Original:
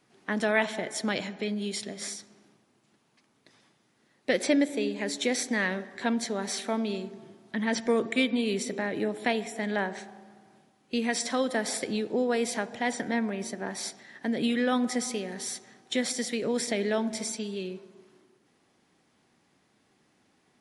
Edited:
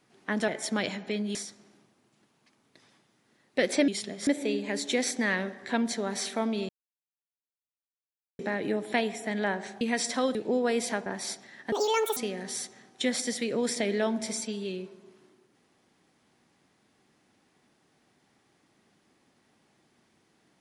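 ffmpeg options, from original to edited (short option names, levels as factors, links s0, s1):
-filter_complex "[0:a]asplit=12[s0][s1][s2][s3][s4][s5][s6][s7][s8][s9][s10][s11];[s0]atrim=end=0.482[s12];[s1]atrim=start=0.798:end=1.672[s13];[s2]atrim=start=2.058:end=4.592[s14];[s3]atrim=start=1.668:end=2.062[s15];[s4]atrim=start=4.588:end=7.01,asetpts=PTS-STARTPTS,afade=t=out:st=2.418:d=0.004:c=hsin[s16];[s5]atrim=start=7.01:end=8.71,asetpts=PTS-STARTPTS,volume=0[s17];[s6]atrim=start=8.71:end=10.132,asetpts=PTS-STARTPTS,afade=t=in:d=0.004:c=hsin[s18];[s7]atrim=start=10.968:end=11.512[s19];[s8]atrim=start=11.998:end=12.712[s20];[s9]atrim=start=13.618:end=14.284[s21];[s10]atrim=start=14.28:end=15.08,asetpts=PTS-STARTPTS,asetrate=78939,aresample=44100,atrim=end_sample=19709,asetpts=PTS-STARTPTS[s22];[s11]atrim=start=15.076[s23];[s12][s13]acrossfade=d=0.004:c1=hsin:c2=hsin[s24];[s24][s14]acrossfade=d=0.004:c1=hsin:c2=hsin[s25];[s25][s15]acrossfade=d=0.004:c1=hsin:c2=hsin[s26];[s16][s17][s18]concat=n=3:v=0:a=1[s27];[s26][s27]acrossfade=d=0.004:c1=hsin:c2=hsin[s28];[s28][s19]acrossfade=d=0.004:c1=hsin:c2=hsin[s29];[s29][s20]acrossfade=d=0.004:c1=hsin:c2=hsin[s30];[s30][s21]acrossfade=d=0.004:c1=hsin:c2=hsin[s31];[s31][s22]acrossfade=d=0.004:c1=hsin:c2=hsin[s32];[s32][s23]acrossfade=d=0.004:c1=hsin:c2=hsin"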